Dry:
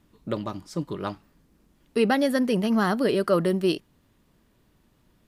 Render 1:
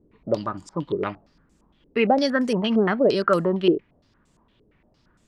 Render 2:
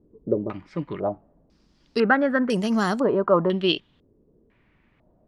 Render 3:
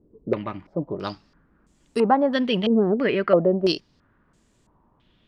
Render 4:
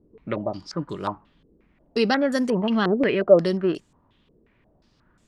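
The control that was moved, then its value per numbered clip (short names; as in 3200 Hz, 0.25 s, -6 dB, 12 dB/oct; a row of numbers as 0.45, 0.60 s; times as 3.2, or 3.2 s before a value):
stepped low-pass, rate: 8.7, 2, 3, 5.6 Hz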